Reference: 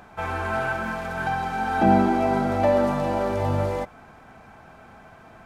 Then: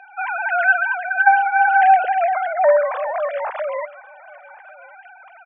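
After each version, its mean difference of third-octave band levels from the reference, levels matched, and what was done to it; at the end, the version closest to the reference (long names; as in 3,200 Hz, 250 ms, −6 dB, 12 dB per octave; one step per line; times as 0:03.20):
17.0 dB: three sine waves on the formant tracks
high-pass filter 470 Hz
parametric band 1,900 Hz +8.5 dB 2.3 octaves
on a send: single-tap delay 1,096 ms −23 dB
on the sum: level +2 dB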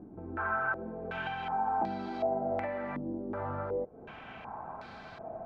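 9.0 dB: low-shelf EQ 89 Hz −6 dB
downward compressor 5 to 1, threshold −37 dBFS, peak gain reduction 20 dB
low-pass on a step sequencer 2.7 Hz 310–4,300 Hz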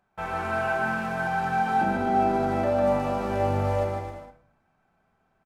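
5.0 dB: noise gate with hold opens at −35 dBFS
brickwall limiter −16.5 dBFS, peak gain reduction 9 dB
on a send: bouncing-ball delay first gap 150 ms, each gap 0.75×, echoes 5
on the sum: rectangular room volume 500 cubic metres, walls furnished, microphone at 1.1 metres
level −4.5 dB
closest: third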